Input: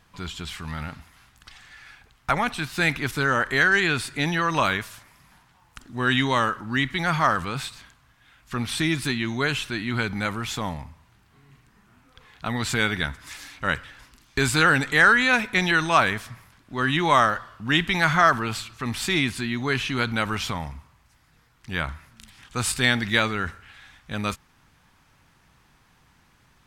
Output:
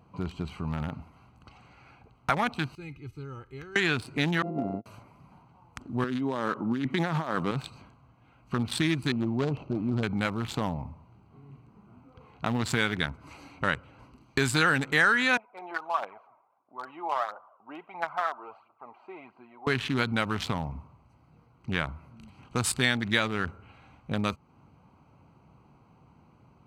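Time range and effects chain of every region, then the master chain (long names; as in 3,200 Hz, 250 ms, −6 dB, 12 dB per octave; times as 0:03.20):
0:02.75–0:03.76: guitar amp tone stack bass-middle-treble 6-0-2 + comb filter 2.4 ms, depth 73%
0:04.42–0:04.86: samples sorted by size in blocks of 64 samples + noise gate −28 dBFS, range −24 dB + resonant band-pass 270 Hz, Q 1.6
0:06.04–0:07.51: high-pass filter 210 Hz + tilt shelving filter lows +4.5 dB, about 750 Hz + compressor whose output falls as the input rises −28 dBFS
0:09.12–0:10.03: running median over 25 samples + low-pass filter 6,600 Hz 24 dB per octave
0:15.37–0:19.67: four-pole ladder band-pass 940 Hz, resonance 40% + phase shifter 1.5 Hz, delay 3.4 ms + one half of a high-frequency compander decoder only
whole clip: adaptive Wiener filter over 25 samples; high-pass filter 89 Hz; downward compressor 2 to 1, threshold −35 dBFS; level +6 dB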